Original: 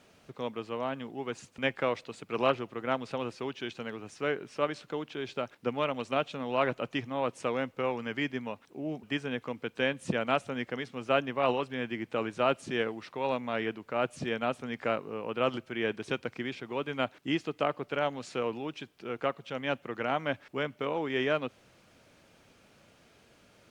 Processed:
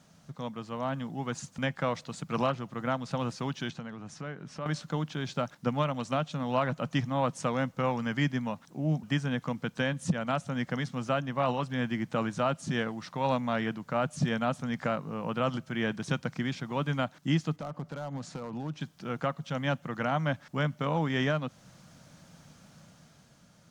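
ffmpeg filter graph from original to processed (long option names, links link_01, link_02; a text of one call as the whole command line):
ffmpeg -i in.wav -filter_complex "[0:a]asettb=1/sr,asplit=3[link_01][link_02][link_03];[link_01]atrim=end=3.704[link_04];[link_02]atrim=start=3.7:end=4.66,asetpts=PTS-STARTPTS,afade=type=in:duration=0.004:curve=qsin,afade=type=out:start_time=0.956:duration=0.004:curve=qsin,aemphasis=mode=reproduction:type=cd,acompressor=threshold=-45dB:ratio=2:attack=3.2:release=140:knee=1:detection=peak[link_05];[link_03]atrim=start=4.656[link_06];[link_04][link_05]acrossfade=duration=0.004:curve1=hsin:curve2=qsin[link_07];[link_07][link_06]acrossfade=duration=0.004:curve1=qsin:curve2=hsin,asettb=1/sr,asplit=3[link_08][link_09][link_10];[link_08]atrim=end=17.564[link_11];[link_09]atrim=start=17.56:end=18.81,asetpts=PTS-STARTPTS,afade=type=in:duration=0.004:curve=qsin,afade=type=out:start_time=1.246:duration=0.004:curve=qsin,highshelf=frequency=2000:gain=-9,acompressor=threshold=-36dB:ratio=4:attack=3.2:release=140:knee=1:detection=peak,asoftclip=type=hard:threshold=-34.5dB[link_12];[link_10]atrim=start=18.806[link_13];[link_11][link_12]acrossfade=duration=0.004:curve1=hsin:curve2=qsin[link_14];[link_14][link_13]acrossfade=duration=0.004:curve1=qsin:curve2=hsin,equalizer=frequency=160:width_type=o:width=0.67:gain=12,equalizer=frequency=400:width_type=o:width=0.67:gain=-11,equalizer=frequency=2500:width_type=o:width=0.67:gain=-8,equalizer=frequency=6300:width_type=o:width=0.67:gain=5,alimiter=limit=-21.5dB:level=0:latency=1:release=351,dynaudnorm=framelen=140:gausssize=13:maxgain=5dB" out.wav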